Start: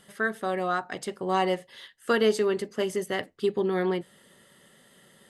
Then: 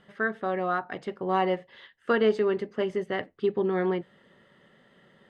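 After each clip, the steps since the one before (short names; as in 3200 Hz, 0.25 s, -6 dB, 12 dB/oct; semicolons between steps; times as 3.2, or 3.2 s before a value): LPF 2500 Hz 12 dB/oct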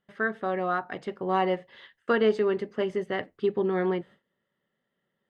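gate with hold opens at -47 dBFS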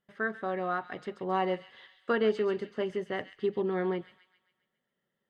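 thin delay 0.135 s, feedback 50%, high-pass 2700 Hz, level -7.5 dB; gain -4 dB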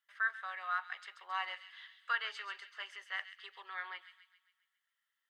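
HPF 1200 Hz 24 dB/oct; gain +1 dB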